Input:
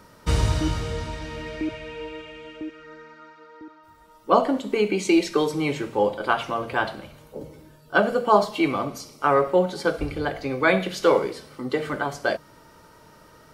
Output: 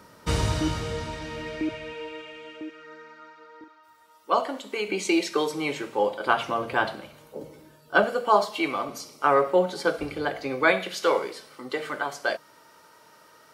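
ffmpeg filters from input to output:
ffmpeg -i in.wav -af "asetnsamples=nb_out_samples=441:pad=0,asendcmd='1.93 highpass f 360;3.64 highpass f 1100;4.88 highpass f 470;6.26 highpass f 120;6.96 highpass f 240;8.04 highpass f 610;8.89 highpass f 290;10.72 highpass f 710',highpass=frequency=110:poles=1" out.wav

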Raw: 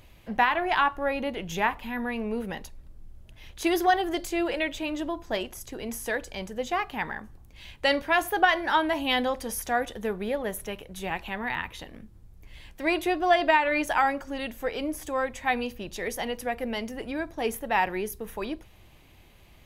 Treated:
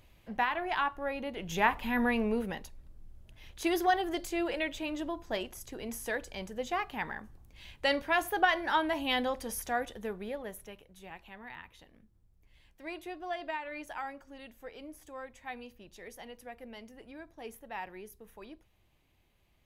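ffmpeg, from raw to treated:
ffmpeg -i in.wav -af "volume=3dB,afade=type=in:start_time=1.31:duration=0.73:silence=0.298538,afade=type=out:start_time=2.04:duration=0.57:silence=0.398107,afade=type=out:start_time=9.57:duration=1.37:silence=0.281838" out.wav

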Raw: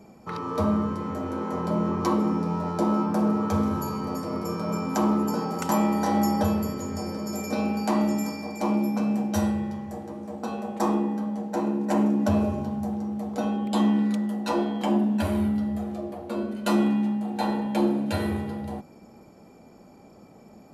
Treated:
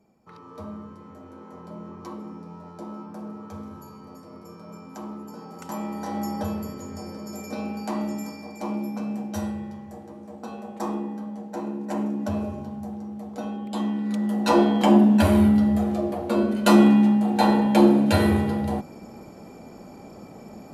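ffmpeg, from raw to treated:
ffmpeg -i in.wav -af "volume=7.5dB,afade=type=in:start_time=5.31:duration=1.2:silence=0.354813,afade=type=in:start_time=14.03:duration=0.52:silence=0.237137" out.wav

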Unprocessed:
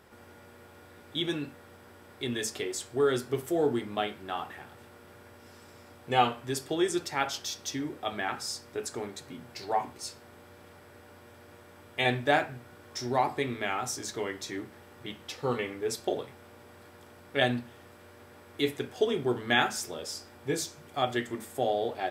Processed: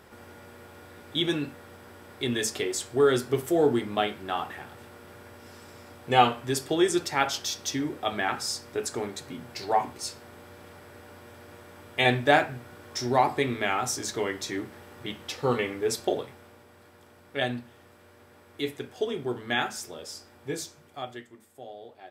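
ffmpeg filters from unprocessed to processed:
ffmpeg -i in.wav -af "volume=4.5dB,afade=type=out:start_time=15.97:duration=0.7:silence=0.446684,afade=type=out:start_time=20.59:duration=0.71:silence=0.237137" out.wav

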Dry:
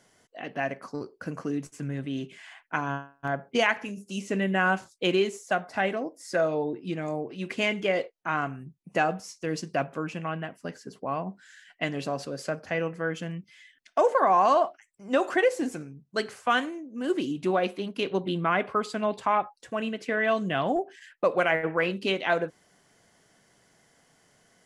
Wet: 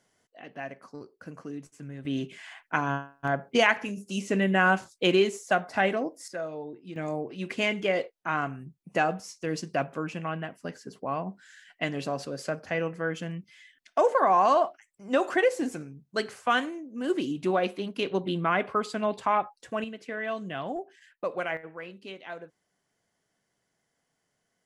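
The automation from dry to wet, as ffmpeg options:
ffmpeg -i in.wav -af "asetnsamples=nb_out_samples=441:pad=0,asendcmd='2.05 volume volume 2dB;6.28 volume volume -9.5dB;6.96 volume volume -0.5dB;19.84 volume volume -7.5dB;21.57 volume volume -15dB',volume=-8dB" out.wav

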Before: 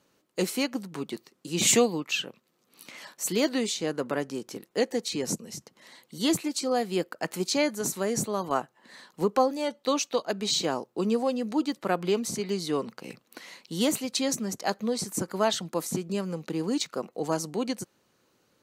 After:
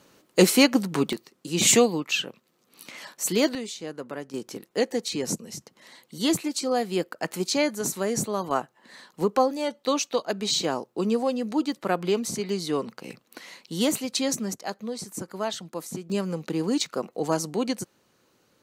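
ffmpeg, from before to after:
ffmpeg -i in.wav -af "asetnsamples=nb_out_samples=441:pad=0,asendcmd='1.13 volume volume 3dB;3.55 volume volume -6dB;4.34 volume volume 1.5dB;14.54 volume volume -4.5dB;16.1 volume volume 3dB',volume=10.5dB" out.wav

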